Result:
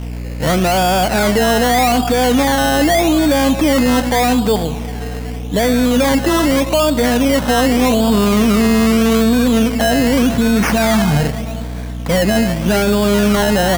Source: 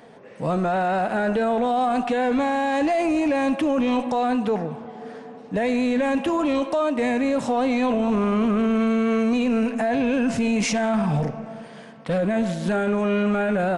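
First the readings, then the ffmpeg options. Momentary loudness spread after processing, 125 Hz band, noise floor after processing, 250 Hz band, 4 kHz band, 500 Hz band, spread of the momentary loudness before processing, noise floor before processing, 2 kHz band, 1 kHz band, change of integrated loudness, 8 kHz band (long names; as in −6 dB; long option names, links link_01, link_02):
8 LU, +11.0 dB, −24 dBFS, +8.0 dB, +16.5 dB, +7.5 dB, 8 LU, −42 dBFS, +10.0 dB, +7.0 dB, +8.5 dB, +16.5 dB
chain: -af "aeval=exprs='val(0)+0.0282*(sin(2*PI*60*n/s)+sin(2*PI*2*60*n/s)/2+sin(2*PI*3*60*n/s)/3+sin(2*PI*4*60*n/s)/4+sin(2*PI*5*60*n/s)/5)':channel_layout=same,acrusher=samples=15:mix=1:aa=0.000001:lfo=1:lforange=9:lforate=0.83,volume=8dB"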